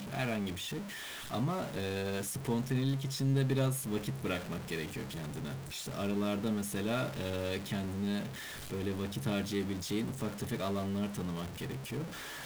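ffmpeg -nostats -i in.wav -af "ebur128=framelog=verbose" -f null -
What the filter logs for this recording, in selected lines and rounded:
Integrated loudness:
  I:         -35.7 LUFS
  Threshold: -45.7 LUFS
Loudness range:
  LRA:         2.6 LU
  Threshold: -55.4 LUFS
  LRA low:   -36.4 LUFS
  LRA high:  -33.8 LUFS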